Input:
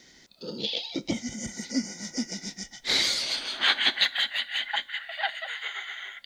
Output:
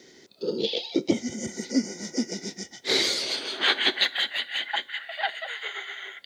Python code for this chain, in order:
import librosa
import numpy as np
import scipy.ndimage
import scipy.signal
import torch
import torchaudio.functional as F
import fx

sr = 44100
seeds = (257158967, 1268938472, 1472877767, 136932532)

y = scipy.signal.sosfilt(scipy.signal.butter(4, 78.0, 'highpass', fs=sr, output='sos'), x)
y = fx.peak_eq(y, sr, hz=400.0, db=14.0, octaves=0.77)